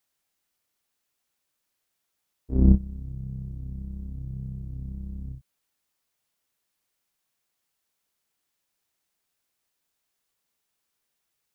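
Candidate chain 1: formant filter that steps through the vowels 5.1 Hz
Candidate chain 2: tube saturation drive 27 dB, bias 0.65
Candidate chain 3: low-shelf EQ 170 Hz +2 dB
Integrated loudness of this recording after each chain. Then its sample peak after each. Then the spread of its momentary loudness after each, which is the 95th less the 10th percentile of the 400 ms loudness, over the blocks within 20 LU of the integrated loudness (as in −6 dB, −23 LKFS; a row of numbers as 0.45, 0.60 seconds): −36.0, −38.5, −27.5 LKFS; −22.5, −23.5, −4.5 dBFS; 7, 8, 17 LU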